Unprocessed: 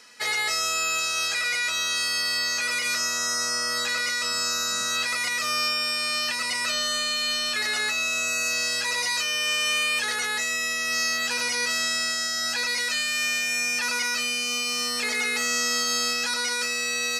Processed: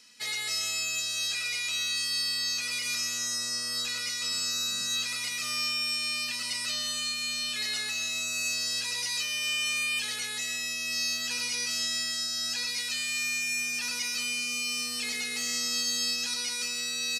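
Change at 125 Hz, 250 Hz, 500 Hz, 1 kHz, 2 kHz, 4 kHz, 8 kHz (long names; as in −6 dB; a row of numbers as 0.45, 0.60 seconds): −2.0, −5.5, −13.5, −14.0, −7.5, −3.5, −4.0 decibels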